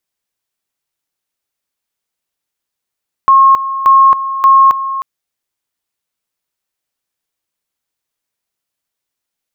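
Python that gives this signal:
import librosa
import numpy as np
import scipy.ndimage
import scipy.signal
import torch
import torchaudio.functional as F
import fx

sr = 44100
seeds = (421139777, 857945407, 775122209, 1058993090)

y = fx.two_level_tone(sr, hz=1080.0, level_db=-3.0, drop_db=12.5, high_s=0.27, low_s=0.31, rounds=3)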